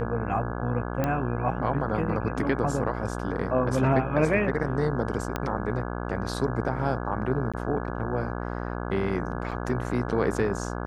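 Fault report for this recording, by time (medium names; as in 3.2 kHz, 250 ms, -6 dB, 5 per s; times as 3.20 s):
buzz 60 Hz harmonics 28 -32 dBFS
1.04 s: pop -13 dBFS
5.36 s: pop -13 dBFS
7.52–7.54 s: dropout 16 ms
9.51–9.52 s: dropout 6.2 ms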